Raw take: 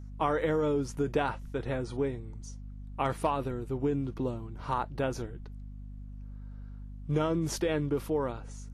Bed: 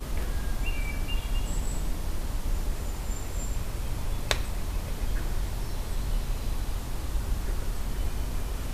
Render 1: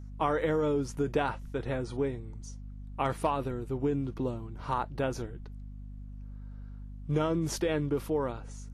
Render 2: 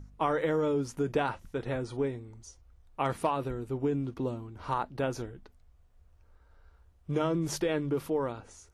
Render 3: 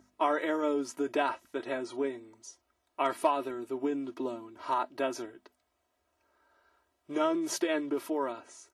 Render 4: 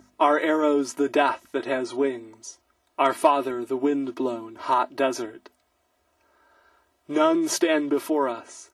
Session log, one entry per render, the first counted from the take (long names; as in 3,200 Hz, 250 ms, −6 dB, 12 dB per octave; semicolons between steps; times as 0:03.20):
no processing that can be heard
hum removal 50 Hz, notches 5
high-pass filter 340 Hz 12 dB per octave; comb filter 3.1 ms, depth 74%
level +8.5 dB